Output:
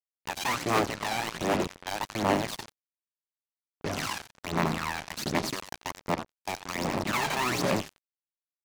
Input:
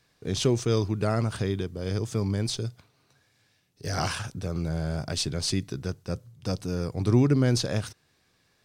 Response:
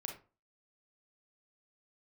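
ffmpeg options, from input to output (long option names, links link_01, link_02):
-filter_complex "[0:a]aeval=exprs='(mod(10.6*val(0)+1,2)-1)/10.6':channel_layout=same,aemphasis=mode=reproduction:type=50kf,asplit=2[link_01][link_02];[link_02]asplit=6[link_03][link_04][link_05][link_06][link_07][link_08];[link_03]adelay=89,afreqshift=53,volume=-7.5dB[link_09];[link_04]adelay=178,afreqshift=106,volume=-13.7dB[link_10];[link_05]adelay=267,afreqshift=159,volume=-19.9dB[link_11];[link_06]adelay=356,afreqshift=212,volume=-26.1dB[link_12];[link_07]adelay=445,afreqshift=265,volume=-32.3dB[link_13];[link_08]adelay=534,afreqshift=318,volume=-38.5dB[link_14];[link_09][link_10][link_11][link_12][link_13][link_14]amix=inputs=6:normalize=0[link_15];[link_01][link_15]amix=inputs=2:normalize=0,aphaser=in_gain=1:out_gain=1:delay=1.3:decay=0.7:speed=1.3:type=sinusoidal,highpass=270,equalizer=frequency=480:width_type=q:width=4:gain=-9,equalizer=frequency=770:width_type=q:width=4:gain=-3,equalizer=frequency=1500:width_type=q:width=4:gain=-7,equalizer=frequency=3300:width_type=q:width=4:gain=-5,equalizer=frequency=5000:width_type=q:width=4:gain=-5,lowpass=frequency=7600:width=0.5412,lowpass=frequency=7600:width=1.3066,acrusher=bits=4:mix=0:aa=0.5"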